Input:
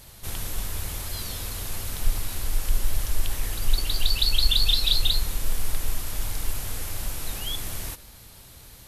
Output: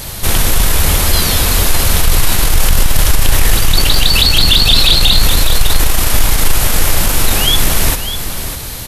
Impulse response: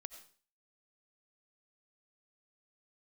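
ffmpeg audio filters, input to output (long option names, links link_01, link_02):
-filter_complex "[0:a]bandreject=frequency=50:width_type=h:width=6,bandreject=frequency=100:width_type=h:width=6,acrossover=split=3900[link_01][link_02];[link_02]acompressor=threshold=-35dB:ratio=4:attack=1:release=60[link_03];[link_01][link_03]amix=inputs=2:normalize=0,apsyclip=26.5dB,asplit=2[link_04][link_05];[link_05]aecho=0:1:601:0.316[link_06];[link_04][link_06]amix=inputs=2:normalize=0,volume=-4dB"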